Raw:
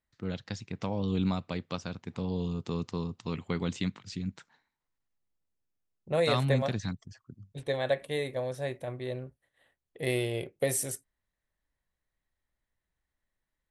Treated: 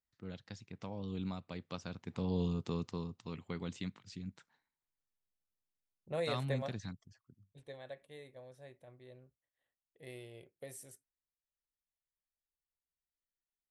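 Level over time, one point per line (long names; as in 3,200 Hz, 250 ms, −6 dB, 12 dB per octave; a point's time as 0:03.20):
0:01.42 −11 dB
0:02.42 −1 dB
0:03.29 −9.5 dB
0:06.84 −9.5 dB
0:07.88 −20 dB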